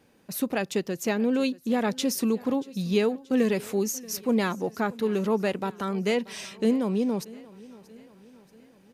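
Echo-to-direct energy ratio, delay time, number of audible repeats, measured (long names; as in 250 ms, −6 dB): −19.5 dB, 632 ms, 3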